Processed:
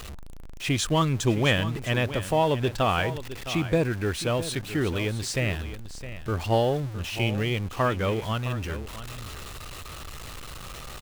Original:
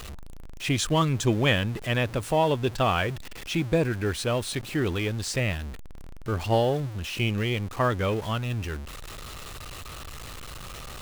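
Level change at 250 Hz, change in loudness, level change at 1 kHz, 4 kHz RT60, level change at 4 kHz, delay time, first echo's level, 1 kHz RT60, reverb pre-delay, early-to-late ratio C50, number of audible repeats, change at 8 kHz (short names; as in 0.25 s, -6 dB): 0.0 dB, 0.0 dB, 0.0 dB, none, 0.0 dB, 0.662 s, -13.0 dB, none, none, none, 1, 0.0 dB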